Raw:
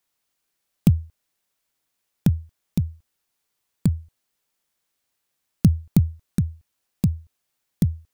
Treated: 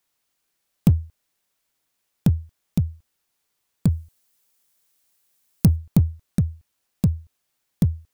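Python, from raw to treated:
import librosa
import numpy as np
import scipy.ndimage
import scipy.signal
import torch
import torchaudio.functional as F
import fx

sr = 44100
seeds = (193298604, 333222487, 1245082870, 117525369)

p1 = fx.high_shelf(x, sr, hz=5300.0, db=10.0, at=(3.9, 5.76))
p2 = np.clip(p1, -10.0 ** (-16.5 / 20.0), 10.0 ** (-16.5 / 20.0))
p3 = p1 + (p2 * librosa.db_to_amplitude(-5.0))
y = p3 * librosa.db_to_amplitude(-2.0)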